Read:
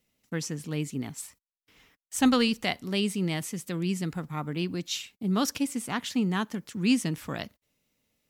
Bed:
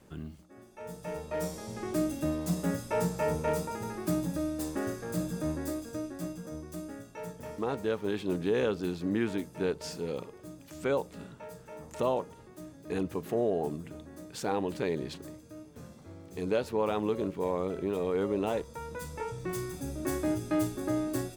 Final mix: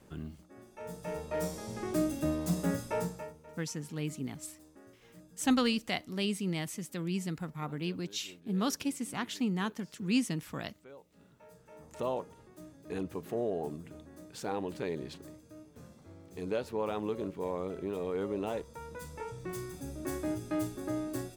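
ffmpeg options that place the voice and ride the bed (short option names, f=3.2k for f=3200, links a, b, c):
-filter_complex "[0:a]adelay=3250,volume=-5dB[a];[1:a]volume=18dB,afade=t=out:st=2.8:d=0.53:silence=0.0749894,afade=t=in:st=11.05:d=1.09:silence=0.11885[b];[a][b]amix=inputs=2:normalize=0"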